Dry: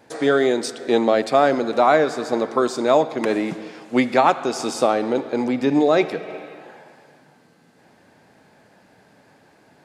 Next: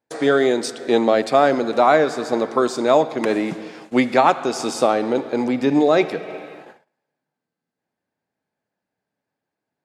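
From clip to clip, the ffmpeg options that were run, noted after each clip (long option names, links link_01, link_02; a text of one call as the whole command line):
ffmpeg -i in.wav -af "agate=range=-30dB:threshold=-41dB:ratio=16:detection=peak,volume=1dB" out.wav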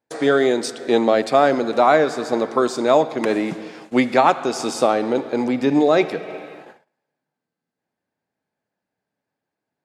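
ffmpeg -i in.wav -af anull out.wav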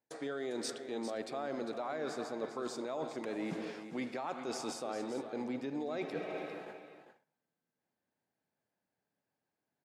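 ffmpeg -i in.wav -af "alimiter=limit=-11dB:level=0:latency=1:release=112,areverse,acompressor=threshold=-30dB:ratio=6,areverse,aecho=1:1:400:0.299,volume=-6.5dB" out.wav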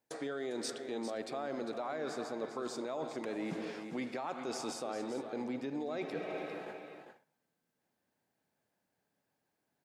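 ffmpeg -i in.wav -af "acompressor=threshold=-49dB:ratio=1.5,volume=5dB" out.wav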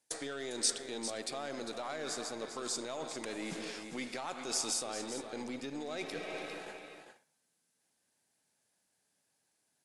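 ffmpeg -i in.wav -af "aeval=exprs='0.0473*(cos(1*acos(clip(val(0)/0.0473,-1,1)))-cos(1*PI/2))+0.00168*(cos(8*acos(clip(val(0)/0.0473,-1,1)))-cos(8*PI/2))':channel_layout=same,crystalizer=i=6:c=0,volume=-3.5dB" -ar 24000 -c:a aac -b:a 96k out.aac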